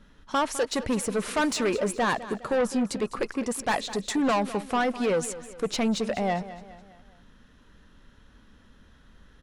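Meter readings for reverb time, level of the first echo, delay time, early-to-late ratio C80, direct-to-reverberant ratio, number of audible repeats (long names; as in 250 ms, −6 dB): no reverb audible, −15.0 dB, 206 ms, no reverb audible, no reverb audible, 3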